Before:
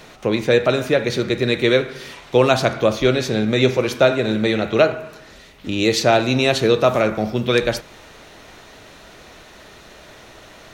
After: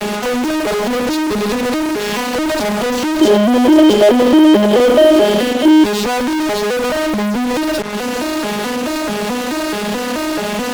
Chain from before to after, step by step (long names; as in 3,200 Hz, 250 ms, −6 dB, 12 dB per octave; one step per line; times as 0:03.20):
vocoder with an arpeggio as carrier minor triad, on G#3, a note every 216 ms
downward compressor 2.5 to 1, threshold −34 dBFS, peak gain reduction 16.5 dB
fuzz pedal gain 59 dB, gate −54 dBFS
0:03.21–0:05.84: hollow resonant body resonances 360/560/3,100 Hz, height 13 dB, ringing for 25 ms
one half of a high-frequency compander decoder only
level −2.5 dB